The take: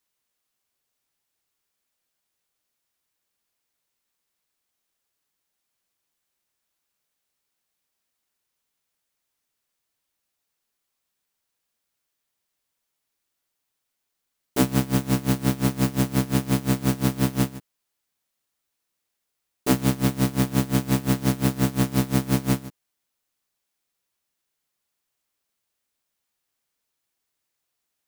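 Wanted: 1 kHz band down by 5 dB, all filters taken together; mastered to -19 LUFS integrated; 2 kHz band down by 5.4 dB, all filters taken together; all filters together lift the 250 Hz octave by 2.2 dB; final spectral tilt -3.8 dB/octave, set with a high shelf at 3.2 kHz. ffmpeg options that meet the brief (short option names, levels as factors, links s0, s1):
-af "equalizer=f=250:t=o:g=3,equalizer=f=1000:t=o:g=-6,equalizer=f=2000:t=o:g=-8.5,highshelf=f=3200:g=9,volume=1.26"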